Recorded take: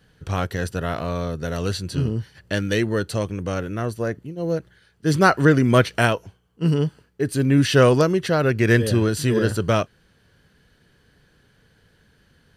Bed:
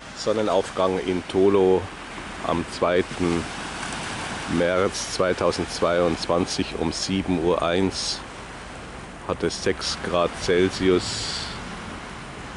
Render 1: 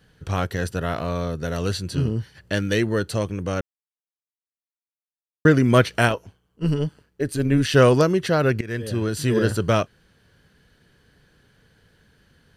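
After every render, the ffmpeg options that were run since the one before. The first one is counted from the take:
-filter_complex "[0:a]asettb=1/sr,asplit=3[s0][s1][s2];[s0]atrim=end=6.084[s3];[s1]atrim=start=6.08:end=7.75,asetpts=PTS-STARTPTS,afade=t=in:d=0.004:c=qsin,afade=t=out:st=1.666:d=0.004:c=qsin,tremolo=f=150:d=0.519[s4];[s2]atrim=start=7.746[s5];[s3][s4]acrossfade=d=0.004:c1=hsin:c2=qsin[s6];[s6][s5]acrossfade=d=0.004:c1=qsin:c2=hsin,asplit=4[s7][s8][s9][s10];[s7]atrim=end=3.61,asetpts=PTS-STARTPTS,afade=t=out:st=3.606:d=0.004:c=hsin[s11];[s8]atrim=start=3.61:end=5.45,asetpts=PTS-STARTPTS,volume=0[s12];[s9]atrim=start=5.45:end=8.61,asetpts=PTS-STARTPTS,afade=t=in:d=0.004:c=hsin,afade=t=out:st=3.156:d=0.004:c=hsin:silence=0.1[s13];[s10]atrim=start=8.61,asetpts=PTS-STARTPTS,afade=t=in:d=0.77:silence=0.1[s14];[s11][s12][s13][s14]concat=n=4:v=0:a=1"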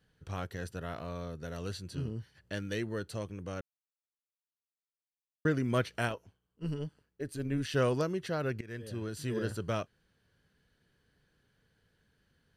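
-af "volume=0.2"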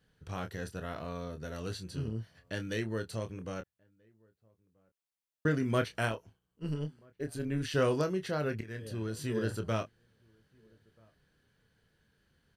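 -filter_complex "[0:a]asplit=2[s0][s1];[s1]adelay=27,volume=0.398[s2];[s0][s2]amix=inputs=2:normalize=0,asplit=2[s3][s4];[s4]adelay=1283,volume=0.0316,highshelf=f=4000:g=-28.9[s5];[s3][s5]amix=inputs=2:normalize=0"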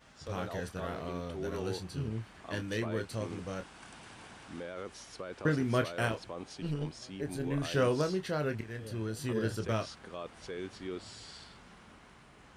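-filter_complex "[1:a]volume=0.0891[s0];[0:a][s0]amix=inputs=2:normalize=0"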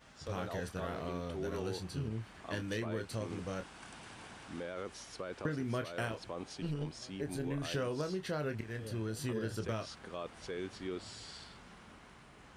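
-af "acompressor=threshold=0.0224:ratio=6"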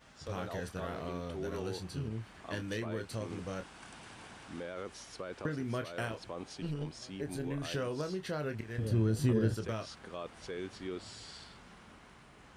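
-filter_complex "[0:a]asettb=1/sr,asplit=3[s0][s1][s2];[s0]atrim=end=8.784[s3];[s1]atrim=start=8.78:end=9.54,asetpts=PTS-STARTPTS,afade=t=in:d=0.004:c=qsin,afade=t=out:st=0.756:d=0.004:c=qsin,lowshelf=f=440:g=11.5[s4];[s2]atrim=start=9.536[s5];[s3][s4]acrossfade=d=0.004:c1=hsin:c2=qsin[s6];[s6][s5]acrossfade=d=0.004:c1=qsin:c2=hsin"

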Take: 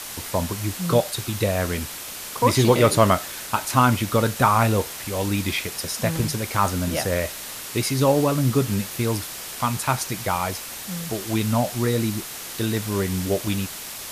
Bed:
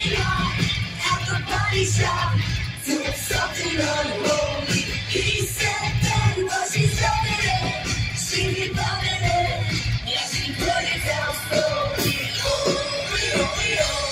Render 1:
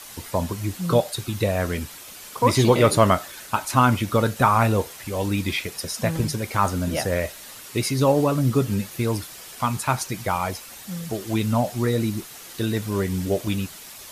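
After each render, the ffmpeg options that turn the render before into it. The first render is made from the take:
-af "afftdn=nr=8:nf=-35"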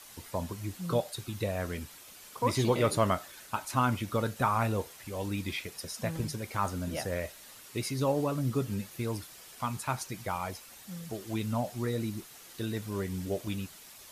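-af "volume=0.316"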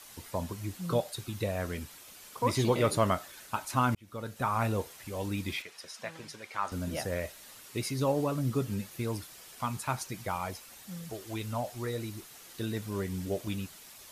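-filter_complex "[0:a]asettb=1/sr,asplit=3[s0][s1][s2];[s0]atrim=end=5.624[s3];[s1]atrim=start=5.62:end=6.72,asetpts=PTS-STARTPTS,afade=t=in:d=0.004:c=qsin,afade=t=out:st=1.096:d=0.004:c=qsin,bandpass=f=2000:t=q:w=0.51[s4];[s2]atrim=start=6.716[s5];[s3][s4]acrossfade=d=0.004:c1=hsin:c2=qsin[s6];[s6][s5]acrossfade=d=0.004:c1=qsin:c2=hsin,asettb=1/sr,asplit=3[s7][s8][s9];[s7]atrim=end=11.104[s10];[s8]atrim=start=11.1:end=12.23,asetpts=PTS-STARTPTS,afade=t=in:d=0.004:c=qsin,afade=t=out:st=1.126:d=0.004:c=qsin,equalizer=f=190:t=o:w=1.1:g=-9[s11];[s9]atrim=start=12.226[s12];[s10][s11]acrossfade=d=0.004:c1=hsin:c2=qsin[s13];[s13][s12]acrossfade=d=0.004:c1=qsin:c2=hsin,asplit=2[s14][s15];[s14]atrim=end=3.95,asetpts=PTS-STARTPTS,afade=t=out:st=3.946:d=0.004:c=hsin[s16];[s15]atrim=start=3.95,asetpts=PTS-STARTPTS,afade=t=in:d=0.72[s17];[s16][s17]concat=n=2:v=0:a=1"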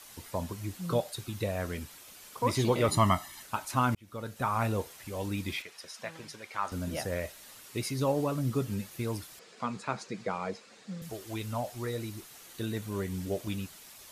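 -filter_complex "[0:a]asettb=1/sr,asplit=3[s0][s1][s2];[s0]atrim=end=2.884[s3];[s1]atrim=start=2.88:end=3.43,asetpts=PTS-STARTPTS,afade=t=in:d=0.004:c=qsin,afade=t=out:st=0.546:d=0.004:c=qsin,aecho=1:1:1:0.89,atrim=end_sample=24255[s4];[s2]atrim=start=3.426[s5];[s3][s4]acrossfade=d=0.004:c1=hsin:c2=qsin[s6];[s6][s5]acrossfade=d=0.004:c1=qsin:c2=hsin,asettb=1/sr,asplit=3[s7][s8][s9];[s7]atrim=end=9.394[s10];[s8]atrim=start=9.39:end=11.02,asetpts=PTS-STARTPTS,afade=t=in:d=0.004:c=qsin,afade=t=out:st=1.626:d=0.004:c=qsin,highpass=180,equalizer=f=200:t=q:w=4:g=9,equalizer=f=460:t=q:w=4:g=10,equalizer=f=890:t=q:w=4:g=-4,equalizer=f=3100:t=q:w=4:g=-5,equalizer=f=5800:t=q:w=4:g=-6,lowpass=f=6600:w=0.5412,lowpass=f=6600:w=1.3066[s11];[s9]atrim=start=11.016[s12];[s10][s11]acrossfade=d=0.004:c1=hsin:c2=qsin[s13];[s13][s12]acrossfade=d=0.004:c1=qsin:c2=hsin,asettb=1/sr,asplit=3[s14][s15][s16];[s14]atrim=end=12.464[s17];[s15]atrim=start=12.46:end=13.13,asetpts=PTS-STARTPTS,afade=t=in:d=0.004:c=qsin,afade=t=out:st=0.666:d=0.004:c=qsin,bandreject=f=5100:w=12[s18];[s16]atrim=start=13.126[s19];[s17][s18]acrossfade=d=0.004:c1=hsin:c2=qsin[s20];[s20][s19]acrossfade=d=0.004:c1=qsin:c2=hsin"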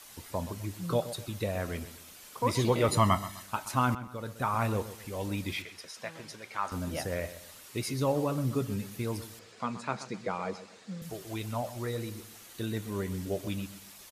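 -filter_complex "[0:a]asplit=2[s0][s1];[s1]adelay=127,lowpass=f=3600:p=1,volume=0.211,asplit=2[s2][s3];[s3]adelay=127,lowpass=f=3600:p=1,volume=0.34,asplit=2[s4][s5];[s5]adelay=127,lowpass=f=3600:p=1,volume=0.34[s6];[s0][s2][s4][s6]amix=inputs=4:normalize=0"

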